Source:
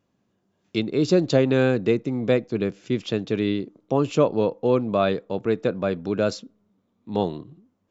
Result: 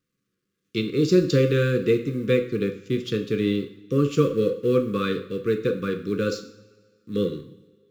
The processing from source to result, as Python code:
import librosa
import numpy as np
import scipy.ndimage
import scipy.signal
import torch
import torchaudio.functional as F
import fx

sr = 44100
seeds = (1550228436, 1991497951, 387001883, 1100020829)

y = fx.law_mismatch(x, sr, coded='A')
y = scipy.signal.sosfilt(scipy.signal.cheby1(5, 1.0, [530.0, 1100.0], 'bandstop', fs=sr, output='sos'), y)
y = fx.rev_double_slope(y, sr, seeds[0], early_s=0.51, late_s=1.8, knee_db=-18, drr_db=5.5)